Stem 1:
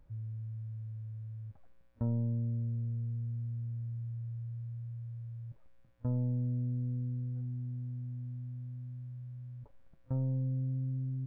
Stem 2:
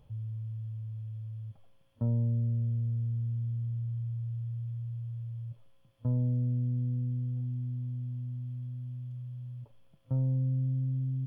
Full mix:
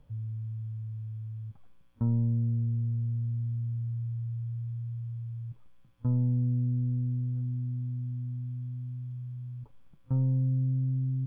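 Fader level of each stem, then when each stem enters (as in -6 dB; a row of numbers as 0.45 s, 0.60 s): +1.5 dB, -4.5 dB; 0.00 s, 0.00 s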